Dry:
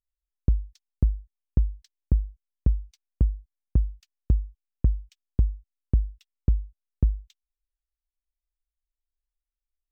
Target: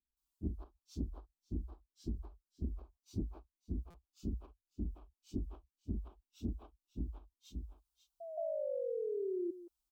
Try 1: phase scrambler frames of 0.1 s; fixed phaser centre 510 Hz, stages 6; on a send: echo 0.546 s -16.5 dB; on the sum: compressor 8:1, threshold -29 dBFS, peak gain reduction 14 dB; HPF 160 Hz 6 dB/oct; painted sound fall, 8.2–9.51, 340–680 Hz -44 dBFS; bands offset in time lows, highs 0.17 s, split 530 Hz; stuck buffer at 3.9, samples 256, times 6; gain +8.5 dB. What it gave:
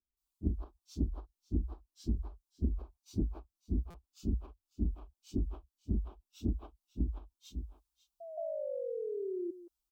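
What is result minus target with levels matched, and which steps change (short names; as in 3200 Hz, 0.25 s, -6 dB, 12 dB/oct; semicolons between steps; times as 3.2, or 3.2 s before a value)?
compressor: peak gain reduction -7.5 dB
change: compressor 8:1, threshold -37.5 dBFS, peak gain reduction 21 dB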